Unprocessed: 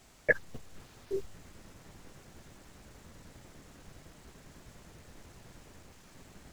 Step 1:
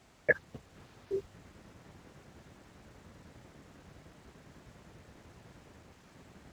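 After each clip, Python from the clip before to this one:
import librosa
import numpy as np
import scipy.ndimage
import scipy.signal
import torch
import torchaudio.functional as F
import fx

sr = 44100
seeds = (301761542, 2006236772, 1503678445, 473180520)

y = scipy.signal.sosfilt(scipy.signal.butter(2, 59.0, 'highpass', fs=sr, output='sos'), x)
y = fx.high_shelf(y, sr, hz=5200.0, db=-11.0)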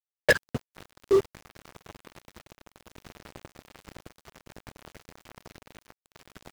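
y = fx.leveller(x, sr, passes=5)
y = fx.quant_dither(y, sr, seeds[0], bits=8, dither='none')
y = y * 10.0 ** (-1.5 / 20.0)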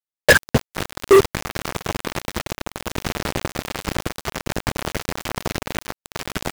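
y = fx.leveller(x, sr, passes=5)
y = y * 10.0 ** (6.0 / 20.0)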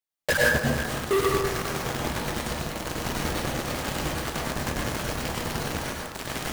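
y = 10.0 ** (-20.5 / 20.0) * np.tanh(x / 10.0 ** (-20.5 / 20.0))
y = y + 10.0 ** (-13.5 / 20.0) * np.pad(y, (int(328 * sr / 1000.0), 0))[:len(y)]
y = fx.rev_plate(y, sr, seeds[1], rt60_s=0.93, hf_ratio=0.6, predelay_ms=85, drr_db=-3.5)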